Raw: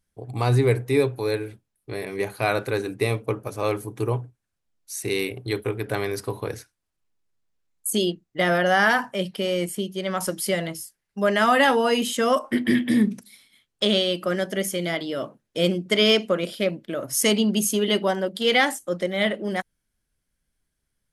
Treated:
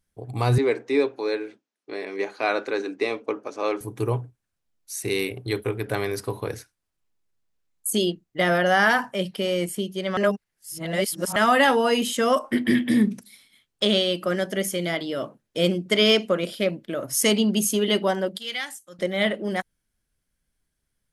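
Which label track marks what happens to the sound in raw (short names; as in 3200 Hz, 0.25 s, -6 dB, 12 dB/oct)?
0.580000	3.810000	Chebyshev band-pass 260–6400 Hz, order 3
10.170000	11.360000	reverse
18.380000	18.990000	passive tone stack bass-middle-treble 5-5-5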